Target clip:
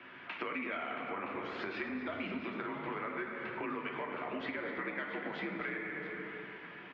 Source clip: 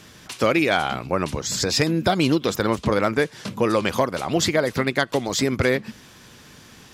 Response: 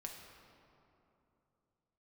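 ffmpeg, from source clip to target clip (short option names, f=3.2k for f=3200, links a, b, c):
-filter_complex "[0:a]highpass=f=290:t=q:w=0.5412,highpass=f=290:t=q:w=1.307,lowpass=f=2.5k:t=q:w=0.5176,lowpass=f=2.5k:t=q:w=0.7071,lowpass=f=2.5k:t=q:w=1.932,afreqshift=-75,acrossover=split=1100[a][b];[a]alimiter=limit=-17.5dB:level=0:latency=1[c];[c][b]amix=inputs=2:normalize=0,crystalizer=i=6:c=0[d];[1:a]atrim=start_sample=2205,asetrate=74970,aresample=44100[e];[d][e]afir=irnorm=-1:irlink=0,acompressor=threshold=-42dB:ratio=5,aecho=1:1:246|675:0.224|0.211,volume=4dB"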